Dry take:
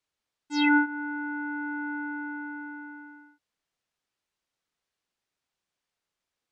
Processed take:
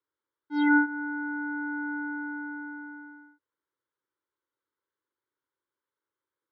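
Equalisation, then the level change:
high-frequency loss of the air 190 metres
loudspeaker in its box 170–3,200 Hz, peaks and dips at 250 Hz −6 dB, 450 Hz −5 dB, 720 Hz −9 dB, 1,200 Hz −7 dB, 1,800 Hz −7 dB
phaser with its sweep stopped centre 700 Hz, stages 6
+7.0 dB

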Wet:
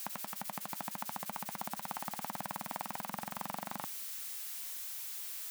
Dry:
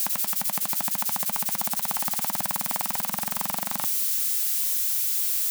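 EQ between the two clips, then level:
low-shelf EQ 86 Hz −8.5 dB
high-shelf EQ 3,000 Hz −11.5 dB
−6.5 dB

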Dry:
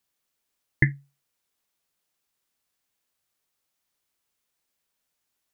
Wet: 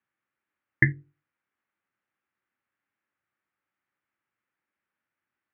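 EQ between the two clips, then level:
loudspeaker in its box 130–2,000 Hz, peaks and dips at 160 Hz −7 dB, 250 Hz −4 dB, 450 Hz −10 dB, 670 Hz −8 dB, 1,000 Hz −6 dB
parametric band 690 Hz −2.5 dB
mains-hum notches 50/100/150/200/250/300/350/400/450/500 Hz
+5.0 dB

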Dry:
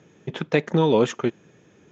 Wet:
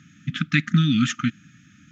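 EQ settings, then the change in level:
linear-phase brick-wall band-stop 300–1,200 Hz
+5.5 dB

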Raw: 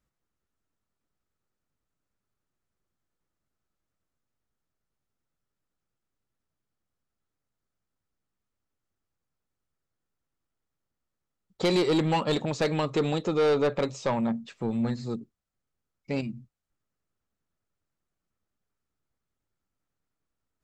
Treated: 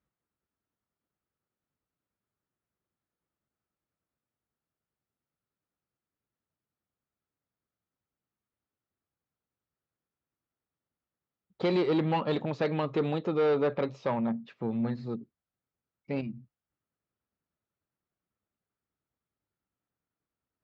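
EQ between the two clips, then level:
high-pass filter 55 Hz
high-frequency loss of the air 270 metres
low-shelf EQ 86 Hz −5 dB
−1.5 dB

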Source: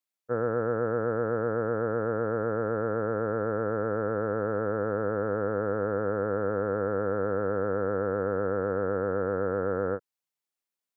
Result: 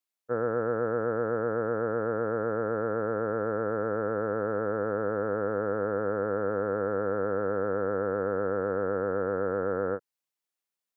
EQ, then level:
low-shelf EQ 100 Hz −8.5 dB
0.0 dB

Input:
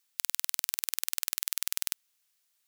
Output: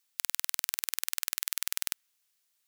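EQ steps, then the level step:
dynamic equaliser 1,700 Hz, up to +4 dB, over −59 dBFS, Q 1.1
−1.0 dB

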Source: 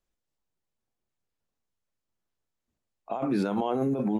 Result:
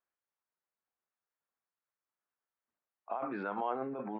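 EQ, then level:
resonant band-pass 1,400 Hz, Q 1.3
high-frequency loss of the air 380 metres
+3.0 dB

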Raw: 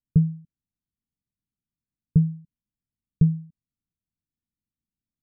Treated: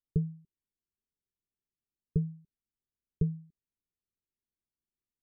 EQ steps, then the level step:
low-pass with resonance 400 Hz, resonance Q 4.9
parametric band 190 Hz −9 dB 3 octaves
−4.0 dB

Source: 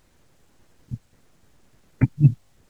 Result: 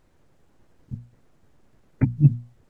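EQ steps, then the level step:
high-shelf EQ 2,100 Hz −10.5 dB
mains-hum notches 60/120/180/240 Hz
0.0 dB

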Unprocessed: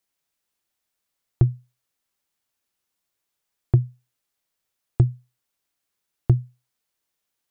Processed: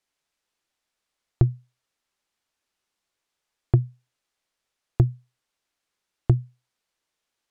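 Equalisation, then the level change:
high-frequency loss of the air 50 metres
parametric band 120 Hz −4.5 dB 2.1 octaves
+3.0 dB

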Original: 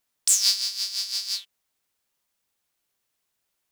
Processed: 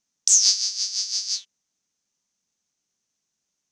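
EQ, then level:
low-pass with resonance 6,200 Hz, resonance Q 6.8
parametric band 200 Hz +12 dB 1.4 octaves
−6.0 dB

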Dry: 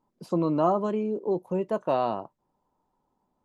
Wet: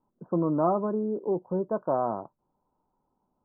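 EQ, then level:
Butterworth low-pass 1,600 Hz 96 dB per octave
high-frequency loss of the air 410 metres
0.0 dB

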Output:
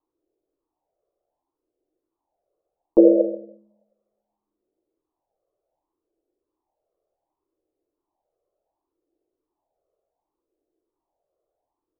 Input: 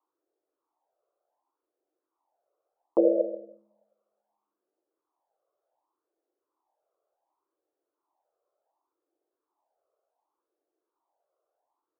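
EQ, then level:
dynamic equaliser 360 Hz, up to +4 dB, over −30 dBFS, Q 0.9
spectral tilt −3.5 dB per octave
tilt shelving filter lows +7 dB, about 770 Hz
−2.5 dB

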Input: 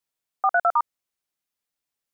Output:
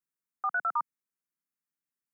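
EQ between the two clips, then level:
high-pass filter 160 Hz 24 dB per octave
low-shelf EQ 330 Hz +10 dB
phaser with its sweep stopped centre 1,500 Hz, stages 4
−7.0 dB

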